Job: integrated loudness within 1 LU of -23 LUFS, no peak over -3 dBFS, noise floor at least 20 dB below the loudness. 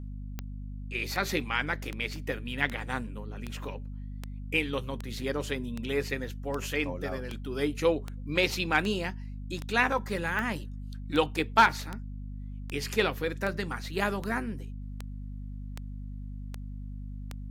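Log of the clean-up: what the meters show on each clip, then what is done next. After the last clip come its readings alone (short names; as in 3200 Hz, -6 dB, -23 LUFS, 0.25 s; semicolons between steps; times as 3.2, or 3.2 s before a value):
clicks 23; hum 50 Hz; harmonics up to 250 Hz; hum level -36 dBFS; loudness -30.5 LUFS; peak -9.0 dBFS; loudness target -23.0 LUFS
-> de-click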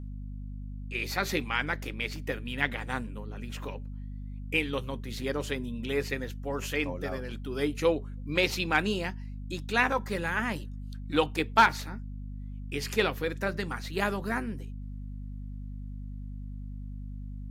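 clicks 0; hum 50 Hz; harmonics up to 250 Hz; hum level -36 dBFS
-> de-hum 50 Hz, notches 5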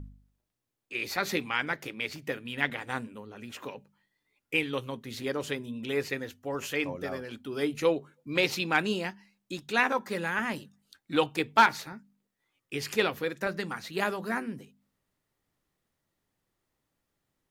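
hum none; loudness -30.5 LUFS; peak -8.5 dBFS; loudness target -23.0 LUFS
-> gain +7.5 dB; limiter -3 dBFS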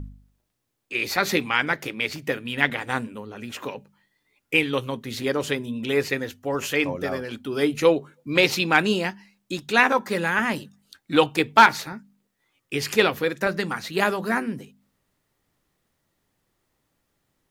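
loudness -23.0 LUFS; peak -3.0 dBFS; noise floor -75 dBFS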